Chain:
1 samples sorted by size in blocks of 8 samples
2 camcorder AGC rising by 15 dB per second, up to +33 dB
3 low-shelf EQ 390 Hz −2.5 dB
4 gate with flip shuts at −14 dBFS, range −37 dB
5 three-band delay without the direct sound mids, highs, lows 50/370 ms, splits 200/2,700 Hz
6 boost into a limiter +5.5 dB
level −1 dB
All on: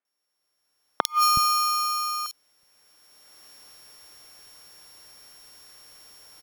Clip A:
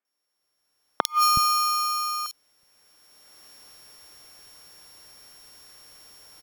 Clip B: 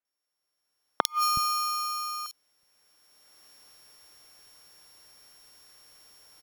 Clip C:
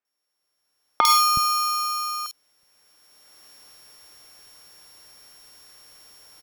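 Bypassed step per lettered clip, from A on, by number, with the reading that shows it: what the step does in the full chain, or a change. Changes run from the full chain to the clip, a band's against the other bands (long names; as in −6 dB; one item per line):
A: 3, 125 Hz band +1.5 dB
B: 6, change in crest factor +4.5 dB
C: 4, change in momentary loudness spread +2 LU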